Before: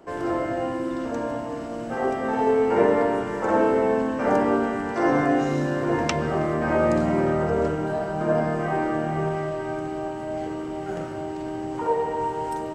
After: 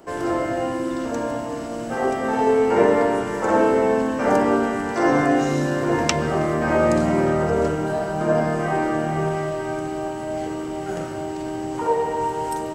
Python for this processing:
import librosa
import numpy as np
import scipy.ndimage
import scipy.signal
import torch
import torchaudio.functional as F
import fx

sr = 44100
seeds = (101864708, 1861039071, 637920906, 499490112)

y = fx.high_shelf(x, sr, hz=5100.0, db=10.0)
y = y * 10.0 ** (2.5 / 20.0)